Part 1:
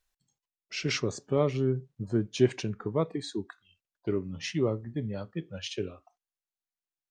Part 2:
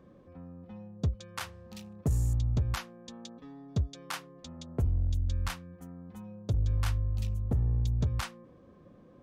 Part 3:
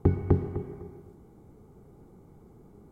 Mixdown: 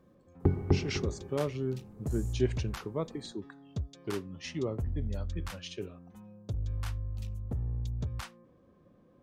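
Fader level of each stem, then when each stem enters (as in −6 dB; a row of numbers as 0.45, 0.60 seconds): −6.0, −6.0, −3.0 decibels; 0.00, 0.00, 0.40 seconds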